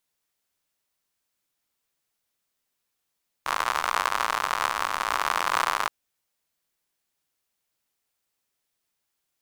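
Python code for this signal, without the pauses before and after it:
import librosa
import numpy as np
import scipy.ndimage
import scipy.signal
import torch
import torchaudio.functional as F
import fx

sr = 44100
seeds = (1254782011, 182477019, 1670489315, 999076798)

y = fx.rain(sr, seeds[0], length_s=2.42, drops_per_s=97.0, hz=1100.0, bed_db=-23.5)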